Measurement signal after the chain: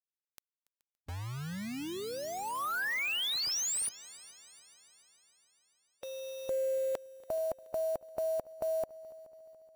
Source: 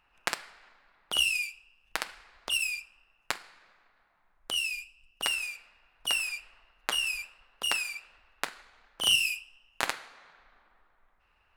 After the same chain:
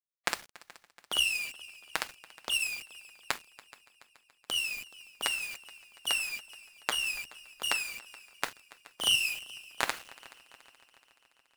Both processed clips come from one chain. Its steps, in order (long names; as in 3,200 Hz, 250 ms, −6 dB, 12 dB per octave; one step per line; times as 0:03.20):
bit reduction 7 bits
echo machine with several playback heads 142 ms, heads second and third, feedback 57%, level −21.5 dB
harmonic and percussive parts rebalanced harmonic −6 dB